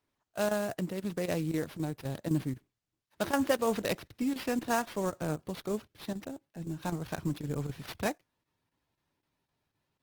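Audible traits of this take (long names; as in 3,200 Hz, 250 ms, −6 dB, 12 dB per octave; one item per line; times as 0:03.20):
chopped level 3.9 Hz, depth 65%, duty 90%
aliases and images of a low sample rate 7,800 Hz, jitter 20%
Opus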